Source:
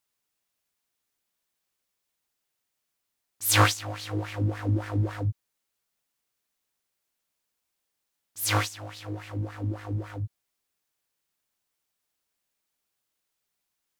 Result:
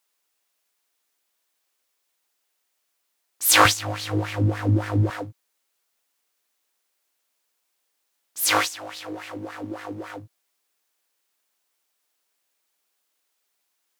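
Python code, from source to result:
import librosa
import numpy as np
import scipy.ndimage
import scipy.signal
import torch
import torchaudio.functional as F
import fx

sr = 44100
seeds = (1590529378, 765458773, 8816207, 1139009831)

y = fx.highpass(x, sr, hz=fx.steps((0.0, 350.0), (3.65, 82.0), (5.1, 330.0)), slope=12)
y = y * librosa.db_to_amplitude(6.5)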